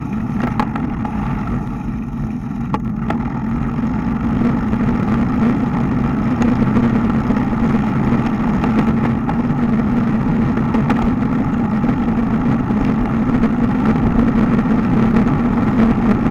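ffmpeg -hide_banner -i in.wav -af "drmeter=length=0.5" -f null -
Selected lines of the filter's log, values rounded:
Channel 1: DR: 8.3
Overall DR: 8.3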